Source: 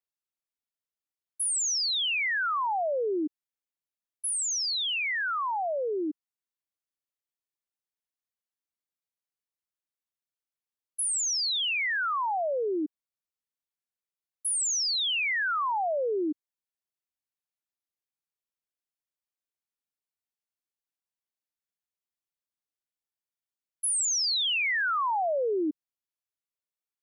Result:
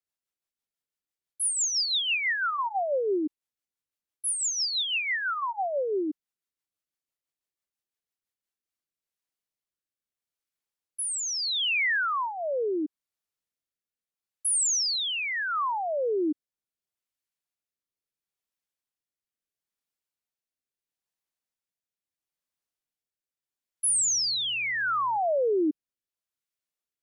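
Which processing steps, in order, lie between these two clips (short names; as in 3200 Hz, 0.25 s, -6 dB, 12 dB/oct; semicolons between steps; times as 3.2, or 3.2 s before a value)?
rotary speaker horn 6 Hz, later 0.75 Hz, at 8.23; 23.87–25.17 buzz 120 Hz, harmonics 14, -61 dBFS -9 dB/oct; gain +3.5 dB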